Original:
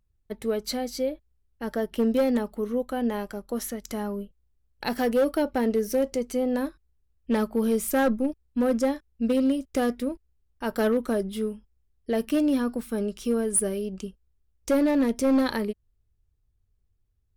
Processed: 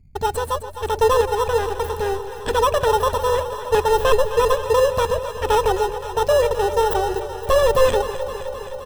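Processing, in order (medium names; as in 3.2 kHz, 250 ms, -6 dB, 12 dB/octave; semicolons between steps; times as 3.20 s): tone controls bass +14 dB, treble -4 dB; comb 2.3 ms, depth 33%; in parallel at -5 dB: sample-and-hold 38×; on the sum: wide varispeed 1.96×; on a send: echo whose repeats swap between lows and highs 130 ms, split 810 Hz, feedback 86%, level -10.5 dB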